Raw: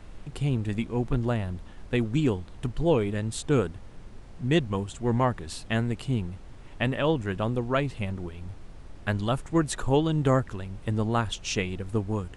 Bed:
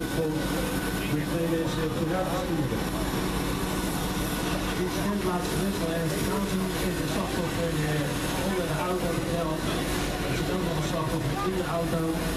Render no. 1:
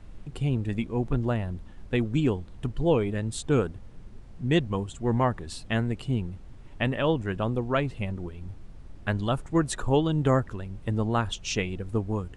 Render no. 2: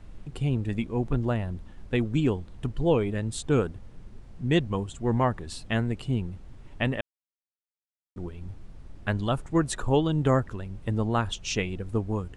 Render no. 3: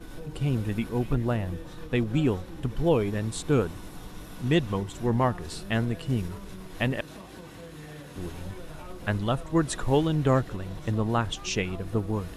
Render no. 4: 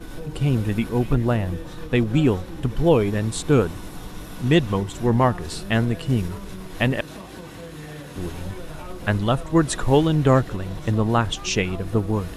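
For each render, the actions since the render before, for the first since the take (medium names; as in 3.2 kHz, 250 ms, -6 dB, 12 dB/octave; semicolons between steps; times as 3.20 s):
noise reduction 6 dB, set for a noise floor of -45 dBFS
7.01–8.16 s: mute
add bed -16 dB
trim +6 dB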